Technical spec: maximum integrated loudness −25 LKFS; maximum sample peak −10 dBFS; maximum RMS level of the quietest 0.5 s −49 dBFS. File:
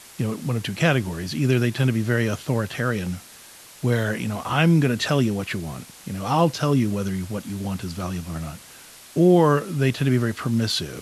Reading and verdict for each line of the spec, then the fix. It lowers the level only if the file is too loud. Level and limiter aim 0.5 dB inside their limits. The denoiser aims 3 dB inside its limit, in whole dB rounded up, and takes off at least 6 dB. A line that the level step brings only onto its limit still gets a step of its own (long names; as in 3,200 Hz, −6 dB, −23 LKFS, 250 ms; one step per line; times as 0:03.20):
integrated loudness −23.0 LKFS: out of spec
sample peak −4.5 dBFS: out of spec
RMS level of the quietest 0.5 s −46 dBFS: out of spec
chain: broadband denoise 6 dB, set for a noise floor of −46 dBFS
level −2.5 dB
brickwall limiter −10.5 dBFS